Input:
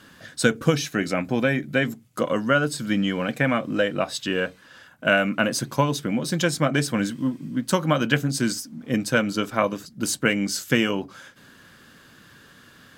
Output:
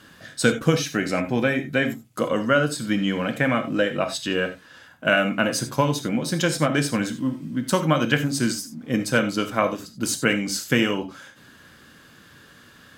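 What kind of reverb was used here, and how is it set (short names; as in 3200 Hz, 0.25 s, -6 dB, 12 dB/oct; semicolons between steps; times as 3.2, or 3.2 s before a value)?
non-linear reverb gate 0.11 s flat, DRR 7.5 dB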